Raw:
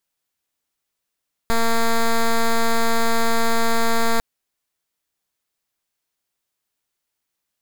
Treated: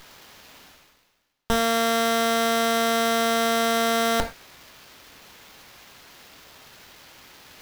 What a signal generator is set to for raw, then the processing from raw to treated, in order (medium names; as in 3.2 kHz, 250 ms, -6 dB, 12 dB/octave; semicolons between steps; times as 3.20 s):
pulse 229 Hz, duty 8% -16.5 dBFS 2.70 s
reverse; upward compressor, threshold -20 dBFS; reverse; gated-style reverb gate 140 ms falling, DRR 5 dB; sliding maximum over 5 samples